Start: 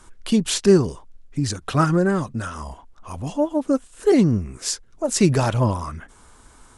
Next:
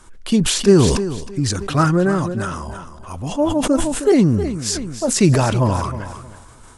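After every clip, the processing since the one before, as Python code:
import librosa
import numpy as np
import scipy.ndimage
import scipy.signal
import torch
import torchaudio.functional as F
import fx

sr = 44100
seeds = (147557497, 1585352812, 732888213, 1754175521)

y = fx.echo_feedback(x, sr, ms=314, feedback_pct=26, wet_db=-13.0)
y = fx.sustainer(y, sr, db_per_s=40.0)
y = y * 10.0 ** (2.0 / 20.0)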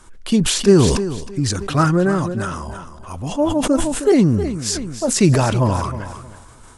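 y = x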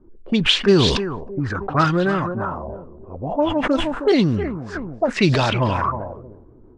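y = fx.low_shelf(x, sr, hz=480.0, db=-4.5)
y = fx.envelope_lowpass(y, sr, base_hz=320.0, top_hz=3700.0, q=3.4, full_db=-14.5, direction='up')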